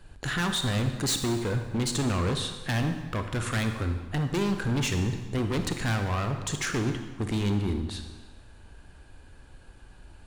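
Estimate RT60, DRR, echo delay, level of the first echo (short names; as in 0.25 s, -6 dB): 1.3 s, 6.0 dB, none, none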